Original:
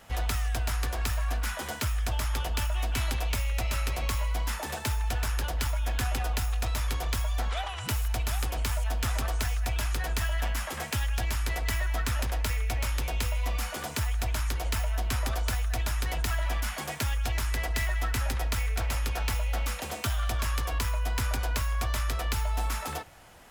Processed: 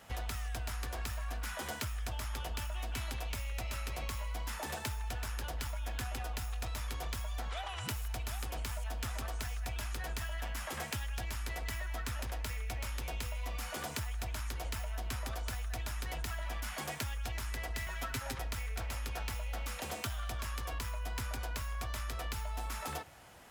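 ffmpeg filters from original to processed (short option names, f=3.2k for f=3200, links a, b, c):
-filter_complex "[0:a]asettb=1/sr,asplit=3[a][b][c];[a]atrim=end=17.864[d];[b]atrim=start=17.86:end=18.39,asetpts=PTS-STARTPTS,afade=t=in:d=0.004:c=qsin,afade=t=out:st=0.526:d=0.004:c=qsin,aecho=1:1:7.4:0.83,atrim=end_sample=23373[e];[c]atrim=start=18.386[f];[d][e]acrossfade=d=0.004:c1=hsin:c2=qsin[g];[g][f]acrossfade=d=0.004:c1=qsin:c2=hsin,highpass=50,acompressor=threshold=-32dB:ratio=6,volume=-3dB"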